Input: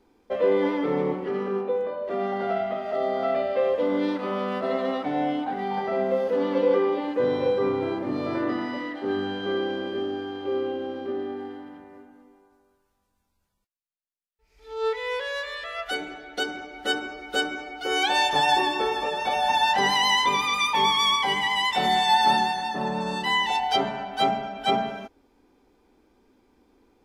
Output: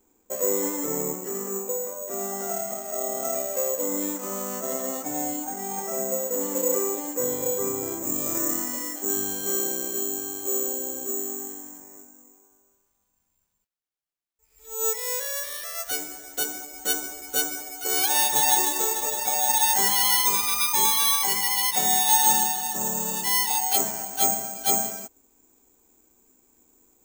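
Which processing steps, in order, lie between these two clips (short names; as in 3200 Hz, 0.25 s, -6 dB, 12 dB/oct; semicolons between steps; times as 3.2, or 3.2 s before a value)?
careless resampling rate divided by 6×, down none, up zero stuff; high shelf 4100 Hz -9.5 dB, from 8.03 s -2.5 dB; gain -5.5 dB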